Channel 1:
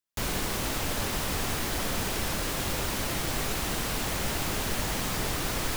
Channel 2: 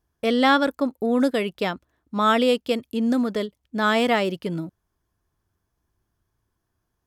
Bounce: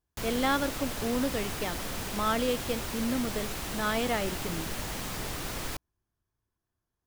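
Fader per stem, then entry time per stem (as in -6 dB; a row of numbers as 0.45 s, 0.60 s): -5.5 dB, -9.5 dB; 0.00 s, 0.00 s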